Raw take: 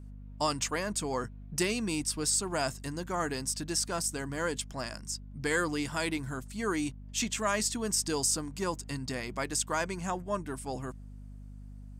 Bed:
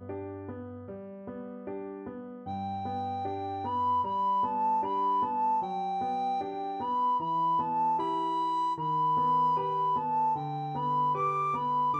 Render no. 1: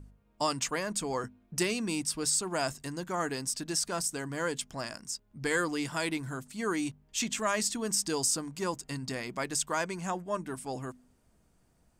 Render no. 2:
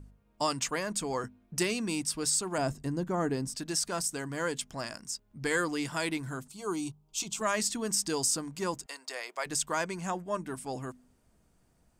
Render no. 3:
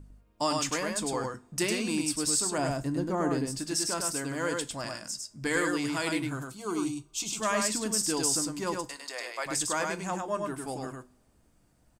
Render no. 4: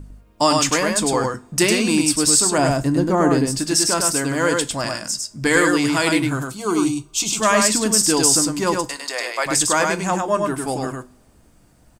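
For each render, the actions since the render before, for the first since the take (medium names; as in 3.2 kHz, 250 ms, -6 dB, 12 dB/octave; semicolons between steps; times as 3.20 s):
de-hum 50 Hz, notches 5
2.58–3.55 s: tilt shelf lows +7.5 dB, about 810 Hz; 6.48–7.41 s: static phaser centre 360 Hz, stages 8; 8.86–9.46 s: high-pass 490 Hz 24 dB/octave
delay 103 ms -3.5 dB; two-slope reverb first 0.24 s, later 1.7 s, from -27 dB, DRR 11 dB
trim +12 dB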